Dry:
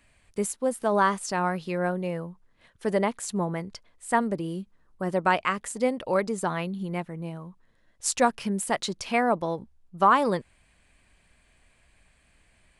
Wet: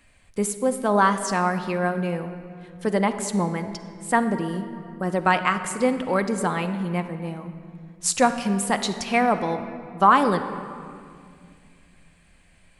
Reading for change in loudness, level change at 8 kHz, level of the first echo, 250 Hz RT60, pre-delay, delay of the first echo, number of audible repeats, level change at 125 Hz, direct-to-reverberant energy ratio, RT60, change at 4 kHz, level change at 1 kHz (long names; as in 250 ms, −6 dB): +3.5 dB, +4.0 dB, no echo audible, 3.4 s, 4 ms, no echo audible, no echo audible, +4.5 dB, 7.5 dB, 2.2 s, +4.0 dB, +4.0 dB